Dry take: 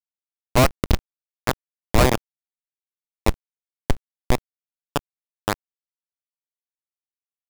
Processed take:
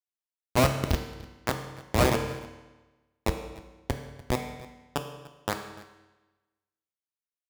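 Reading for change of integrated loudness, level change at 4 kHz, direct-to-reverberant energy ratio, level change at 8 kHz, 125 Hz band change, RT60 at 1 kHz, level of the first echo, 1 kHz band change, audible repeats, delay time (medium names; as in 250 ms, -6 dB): -6.0 dB, -5.5 dB, 4.5 dB, -5.5 dB, -5.5 dB, 1.1 s, -20.0 dB, -5.5 dB, 1, 295 ms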